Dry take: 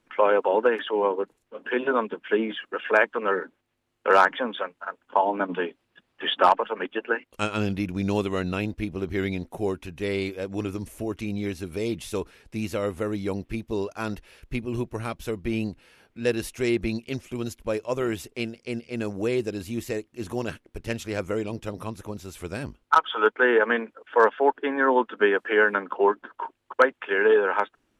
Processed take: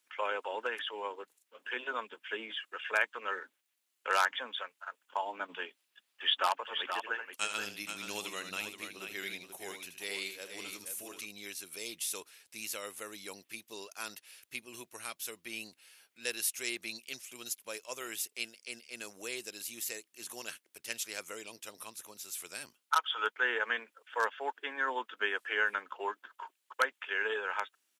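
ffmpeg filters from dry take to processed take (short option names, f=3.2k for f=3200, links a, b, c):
-filter_complex "[0:a]asplit=3[a][b][c];[a]afade=t=out:st=6.67:d=0.02[d];[b]aecho=1:1:78|477:0.355|0.422,afade=t=in:st=6.67:d=0.02,afade=t=out:st=11.25:d=0.02[e];[c]afade=t=in:st=11.25:d=0.02[f];[d][e][f]amix=inputs=3:normalize=0,highpass=100,aderivative,volume=5dB"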